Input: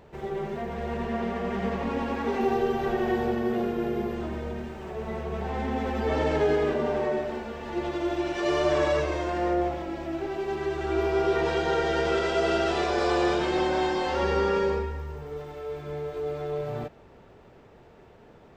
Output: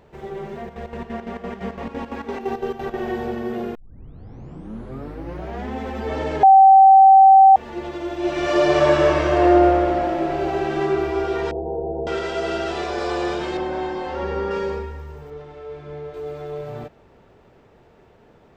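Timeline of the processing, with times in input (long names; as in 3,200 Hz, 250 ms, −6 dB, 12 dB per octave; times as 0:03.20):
0:00.59–0:02.94: square-wave tremolo 5.9 Hz, depth 65%, duty 60%
0:03.75: tape start 1.98 s
0:06.43–0:07.56: beep over 773 Hz −6 dBFS
0:08.17–0:10.80: thrown reverb, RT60 3 s, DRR −7.5 dB
0:11.51–0:12.07: Butterworth low-pass 810 Hz 48 dB per octave
0:13.57–0:14.51: high-shelf EQ 3,100 Hz −11.5 dB
0:15.30–0:16.14: high-frequency loss of the air 93 metres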